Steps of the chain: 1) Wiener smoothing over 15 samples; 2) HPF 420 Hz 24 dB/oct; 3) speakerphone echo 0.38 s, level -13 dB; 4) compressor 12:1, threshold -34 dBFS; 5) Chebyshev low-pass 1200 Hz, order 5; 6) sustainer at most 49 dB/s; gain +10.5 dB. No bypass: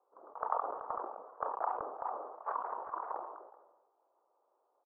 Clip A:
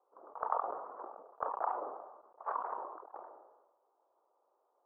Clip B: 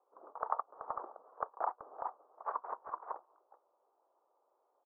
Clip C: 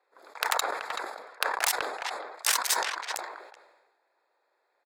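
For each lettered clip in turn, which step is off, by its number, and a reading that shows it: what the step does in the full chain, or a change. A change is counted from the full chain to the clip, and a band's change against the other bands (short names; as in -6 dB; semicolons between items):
3, momentary loudness spread change +5 LU; 6, crest factor change +3.0 dB; 5, 2 kHz band +19.5 dB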